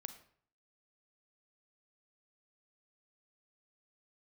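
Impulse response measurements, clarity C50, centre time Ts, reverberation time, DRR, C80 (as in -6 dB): 11.0 dB, 9 ms, 0.55 s, 9.0 dB, 14.0 dB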